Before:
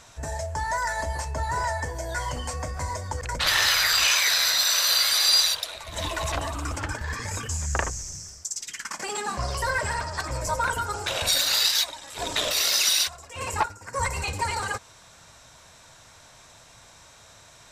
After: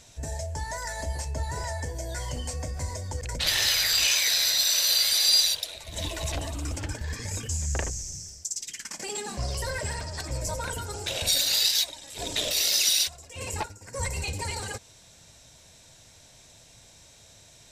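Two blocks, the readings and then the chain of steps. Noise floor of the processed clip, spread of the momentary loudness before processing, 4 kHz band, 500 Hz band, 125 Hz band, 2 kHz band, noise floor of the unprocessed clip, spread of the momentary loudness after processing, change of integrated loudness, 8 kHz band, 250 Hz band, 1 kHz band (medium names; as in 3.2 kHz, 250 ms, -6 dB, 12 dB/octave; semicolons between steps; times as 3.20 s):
-54 dBFS, 14 LU, -1.5 dB, -3.5 dB, 0.0 dB, -6.5 dB, -52 dBFS, 14 LU, -2.0 dB, -0.5 dB, -0.5 dB, -10.0 dB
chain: peaking EQ 1.2 kHz -14 dB 1.2 oct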